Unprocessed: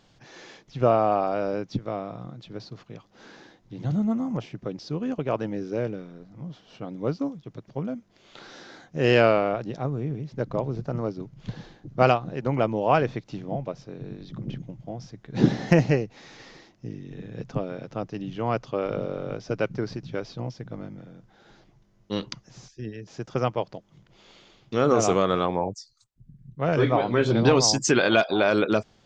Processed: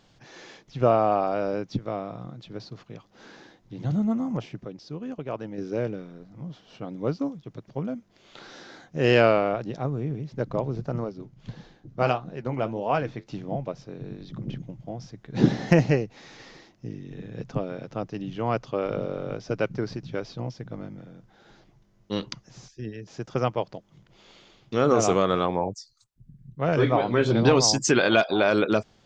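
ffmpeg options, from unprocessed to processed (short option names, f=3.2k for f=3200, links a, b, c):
-filter_complex "[0:a]asettb=1/sr,asplit=3[a][b][c];[a]atrim=end=11.044[d];[b]atrim=start=11.04:end=13.27,asetpts=PTS-STARTPTS,afade=t=in:d=0.004:c=qsin,afade=t=out:st=2.226:d=0.004:c=qsin,flanger=delay=4.2:depth=6.2:regen=-66:speed=1.6:shape=sinusoidal[e];[c]atrim=start=13.266[f];[d][e]acrossfade=d=0.004:c1=hsin:c2=qsin[g];[g][f]acrossfade=d=0.004:c1=qsin:c2=hsin,asplit=3[h][i][j];[h]atrim=end=4.652[k];[i]atrim=start=4.648:end=5.582,asetpts=PTS-STARTPTS,volume=-6dB[l];[j]atrim=start=5.578[m];[k][l]acrossfade=d=0.004:c1=hsin:c2=hsin[n];[n][m]acrossfade=d=0.004:c1=hsin:c2=hsin"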